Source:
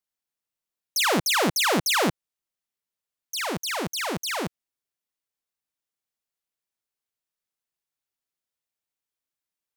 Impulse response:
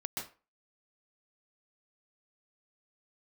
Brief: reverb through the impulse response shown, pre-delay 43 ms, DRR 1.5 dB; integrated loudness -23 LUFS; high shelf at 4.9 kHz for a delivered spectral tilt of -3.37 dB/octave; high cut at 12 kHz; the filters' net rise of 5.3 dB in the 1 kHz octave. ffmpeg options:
-filter_complex "[0:a]lowpass=12000,equalizer=f=1000:t=o:g=7,highshelf=f=4900:g=-7,asplit=2[s0][s1];[1:a]atrim=start_sample=2205,adelay=43[s2];[s1][s2]afir=irnorm=-1:irlink=0,volume=0.708[s3];[s0][s3]amix=inputs=2:normalize=0,volume=0.891"

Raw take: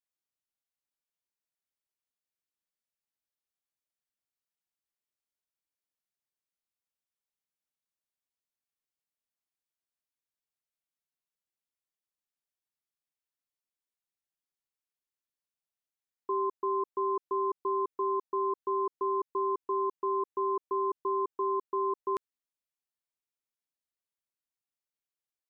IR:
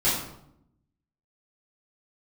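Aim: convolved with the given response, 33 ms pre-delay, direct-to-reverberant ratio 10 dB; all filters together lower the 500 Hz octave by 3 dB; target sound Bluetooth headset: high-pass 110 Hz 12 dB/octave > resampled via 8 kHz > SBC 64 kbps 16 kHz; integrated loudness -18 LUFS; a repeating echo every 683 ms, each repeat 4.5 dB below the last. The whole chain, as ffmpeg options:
-filter_complex "[0:a]equalizer=f=500:t=o:g=-4.5,aecho=1:1:683|1366|2049|2732|3415|4098|4781|5464|6147:0.596|0.357|0.214|0.129|0.0772|0.0463|0.0278|0.0167|0.01,asplit=2[s0][s1];[1:a]atrim=start_sample=2205,adelay=33[s2];[s1][s2]afir=irnorm=-1:irlink=0,volume=0.0668[s3];[s0][s3]amix=inputs=2:normalize=0,highpass=110,aresample=8000,aresample=44100,volume=8.41" -ar 16000 -c:a sbc -b:a 64k

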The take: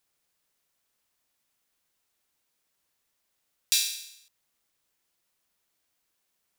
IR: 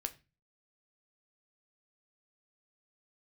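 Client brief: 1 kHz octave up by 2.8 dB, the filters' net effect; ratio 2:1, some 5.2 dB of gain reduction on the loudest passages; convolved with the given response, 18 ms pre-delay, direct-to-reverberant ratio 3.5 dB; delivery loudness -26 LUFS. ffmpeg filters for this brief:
-filter_complex "[0:a]equalizer=f=1000:t=o:g=3.5,acompressor=threshold=0.0398:ratio=2,asplit=2[s0][s1];[1:a]atrim=start_sample=2205,adelay=18[s2];[s1][s2]afir=irnorm=-1:irlink=0,volume=0.75[s3];[s0][s3]amix=inputs=2:normalize=0,volume=1.58"

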